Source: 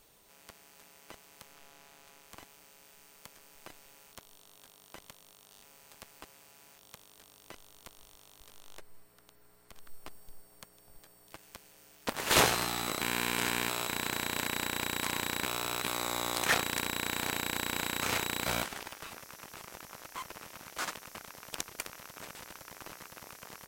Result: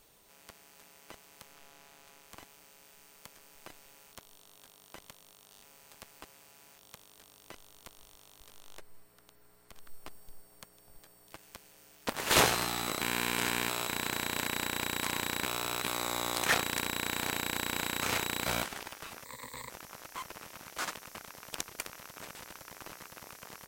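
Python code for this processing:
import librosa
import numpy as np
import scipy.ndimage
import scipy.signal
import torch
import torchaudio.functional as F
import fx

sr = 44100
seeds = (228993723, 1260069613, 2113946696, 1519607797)

y = fx.ripple_eq(x, sr, per_octave=1.0, db=18, at=(19.25, 19.7))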